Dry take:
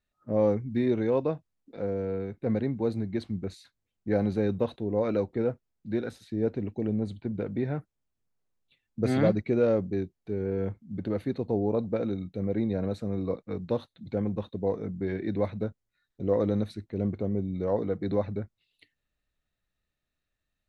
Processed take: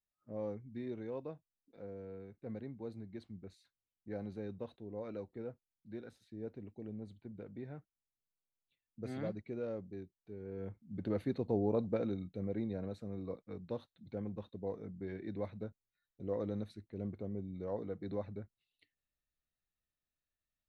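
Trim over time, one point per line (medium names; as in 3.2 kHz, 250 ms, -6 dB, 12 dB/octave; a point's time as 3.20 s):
10.41 s -16.5 dB
11.11 s -5.5 dB
11.92 s -5.5 dB
12.95 s -12 dB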